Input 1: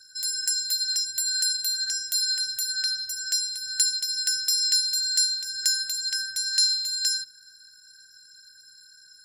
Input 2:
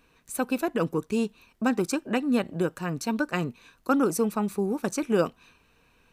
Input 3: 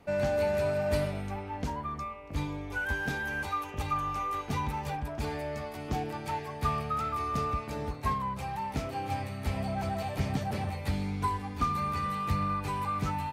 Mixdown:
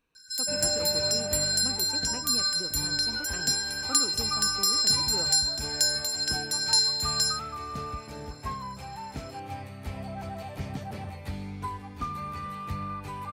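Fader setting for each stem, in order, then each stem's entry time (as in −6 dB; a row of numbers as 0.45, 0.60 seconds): −1.0, −15.5, −4.5 decibels; 0.15, 0.00, 0.40 seconds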